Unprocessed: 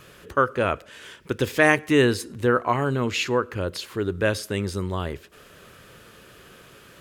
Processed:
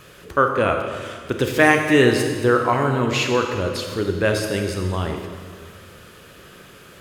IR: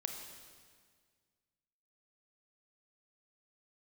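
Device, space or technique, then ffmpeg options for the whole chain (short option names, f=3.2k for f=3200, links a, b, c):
stairwell: -filter_complex "[1:a]atrim=start_sample=2205[a];[0:a][a]afir=irnorm=-1:irlink=0,volume=4.5dB"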